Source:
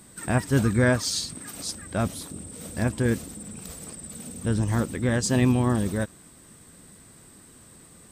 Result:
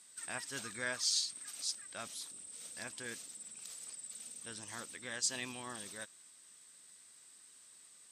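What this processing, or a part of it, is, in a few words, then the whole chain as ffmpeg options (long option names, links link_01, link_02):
piezo pickup straight into a mixer: -af "lowpass=5800,aderivative,volume=1dB"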